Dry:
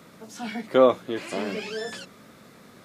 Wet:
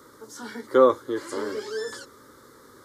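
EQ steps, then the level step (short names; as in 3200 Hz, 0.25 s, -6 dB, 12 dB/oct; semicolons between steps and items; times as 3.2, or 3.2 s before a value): fixed phaser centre 690 Hz, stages 6; +3.0 dB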